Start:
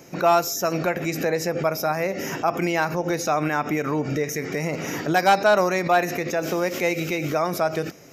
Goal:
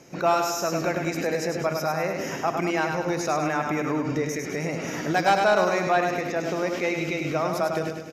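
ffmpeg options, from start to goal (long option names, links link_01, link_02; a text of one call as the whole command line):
ffmpeg -i in.wav -filter_complex "[0:a]lowpass=9900,asplit=2[link_01][link_02];[link_02]aecho=0:1:102|204|306|408|510|612|714:0.562|0.292|0.152|0.0791|0.0411|0.0214|0.0111[link_03];[link_01][link_03]amix=inputs=2:normalize=0,asettb=1/sr,asplit=3[link_04][link_05][link_06];[link_04]atrim=end=5.894[link_07];[link_05]atrim=start=5.89:end=7.53,asetpts=PTS-STARTPTS,afade=type=in:duration=0.004:curve=qsin,afade=type=out:start_time=1.636:duration=0.004:curve=qsin,acrossover=split=5700[link_08][link_09];[link_09]acompressor=threshold=-47dB:ratio=4:attack=1:release=60[link_10];[link_08][link_10]amix=inputs=2:normalize=0[link_11];[link_06]atrim=start=7.526[link_12];[link_07][link_11]acrossfade=duration=0.004:curve1=hsin:curve2=qsin[link_13];[link_13][link_12]acrossfade=duration=0.004:curve1=qsin:curve2=hsin,volume=-3.5dB" out.wav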